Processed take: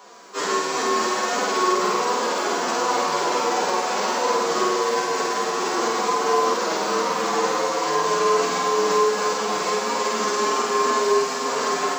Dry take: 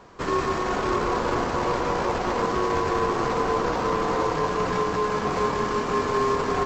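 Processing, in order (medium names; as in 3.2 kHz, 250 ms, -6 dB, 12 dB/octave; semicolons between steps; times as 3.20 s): steep high-pass 150 Hz 96 dB/octave; tone controls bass -11 dB, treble +12 dB; hum notches 60/120/180/240/300 Hz; peak limiter -18 dBFS, peak gain reduction 5.5 dB; time stretch by phase-locked vocoder 1.8×; flange 1.4 Hz, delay 3.9 ms, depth 1.1 ms, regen +72%; on a send: flutter echo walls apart 8.4 m, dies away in 0.78 s; on the sum: bit-crushed delay 128 ms, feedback 80%, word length 9-bit, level -14 dB; trim +7.5 dB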